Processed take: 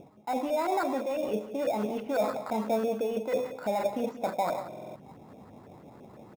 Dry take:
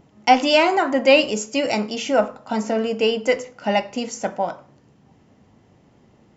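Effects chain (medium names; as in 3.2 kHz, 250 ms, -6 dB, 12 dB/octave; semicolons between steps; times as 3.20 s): bass shelf 76 Hz -11.5 dB; reverse; compression 12:1, threshold -27 dBFS, peak gain reduction 19 dB; reverse; peak limiter -28 dBFS, peak gain reduction 11 dB; LFO low-pass saw up 6 Hz 540–1600 Hz; in parallel at -8 dB: sample-rate reducer 3 kHz, jitter 0%; on the sum: echo from a far wall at 31 m, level -13 dB; buffer glitch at 4.68 s, samples 2048, times 5; trim +1.5 dB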